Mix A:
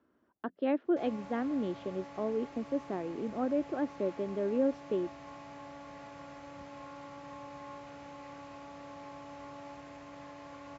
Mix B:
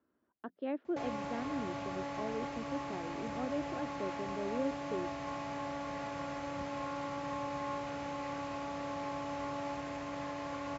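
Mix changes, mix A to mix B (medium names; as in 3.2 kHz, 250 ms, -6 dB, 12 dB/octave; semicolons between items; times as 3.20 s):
speech -7.0 dB; background +8.0 dB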